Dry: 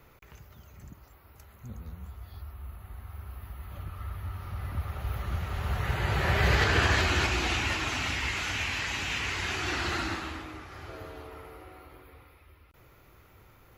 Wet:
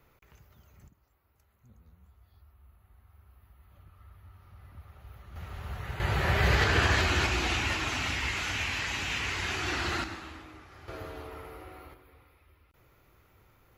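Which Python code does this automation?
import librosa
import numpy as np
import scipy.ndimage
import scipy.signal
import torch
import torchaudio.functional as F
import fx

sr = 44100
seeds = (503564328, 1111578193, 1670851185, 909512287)

y = fx.gain(x, sr, db=fx.steps((0.0, -7.0), (0.88, -16.0), (5.36, -8.0), (6.0, -0.5), (10.04, -7.0), (10.88, 1.5), (11.94, -5.5)))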